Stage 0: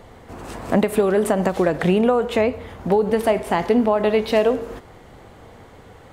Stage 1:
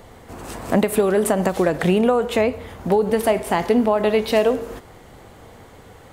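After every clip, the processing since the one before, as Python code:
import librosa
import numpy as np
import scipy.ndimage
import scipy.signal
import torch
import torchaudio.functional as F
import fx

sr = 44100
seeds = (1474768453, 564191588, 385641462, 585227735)

y = fx.high_shelf(x, sr, hz=6500.0, db=8.5)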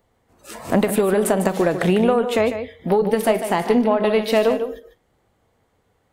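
y = fx.noise_reduce_blind(x, sr, reduce_db=21)
y = y + 10.0 ** (-10.0 / 20.0) * np.pad(y, (int(149 * sr / 1000.0), 0))[:len(y)]
y = fx.cheby_harmonics(y, sr, harmonics=(4,), levels_db=(-27,), full_scale_db=-4.5)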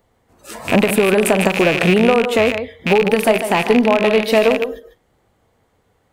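y = fx.rattle_buzz(x, sr, strikes_db=-33.0, level_db=-11.0)
y = y * librosa.db_to_amplitude(3.5)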